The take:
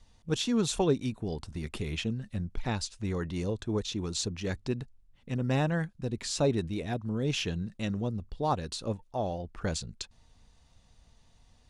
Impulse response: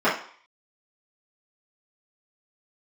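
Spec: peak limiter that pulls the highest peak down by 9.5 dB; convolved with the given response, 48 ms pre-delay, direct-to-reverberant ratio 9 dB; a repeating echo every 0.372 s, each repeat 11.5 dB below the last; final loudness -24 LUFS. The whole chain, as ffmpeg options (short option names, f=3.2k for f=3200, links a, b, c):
-filter_complex "[0:a]alimiter=limit=-24dB:level=0:latency=1,aecho=1:1:372|744|1116:0.266|0.0718|0.0194,asplit=2[a][b];[1:a]atrim=start_sample=2205,adelay=48[c];[b][c]afir=irnorm=-1:irlink=0,volume=-28dB[d];[a][d]amix=inputs=2:normalize=0,volume=10.5dB"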